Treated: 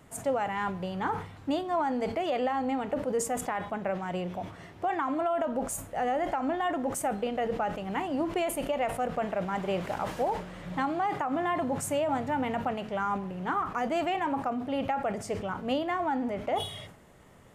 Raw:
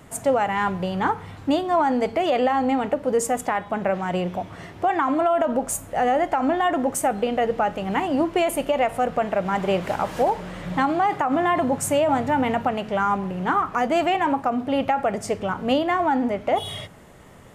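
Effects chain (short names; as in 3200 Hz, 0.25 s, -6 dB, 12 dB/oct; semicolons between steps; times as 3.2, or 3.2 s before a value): sustainer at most 100 dB/s; gain -8.5 dB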